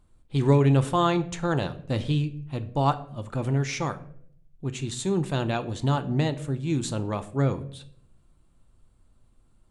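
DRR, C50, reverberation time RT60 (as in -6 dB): 9.0 dB, 16.0 dB, 0.65 s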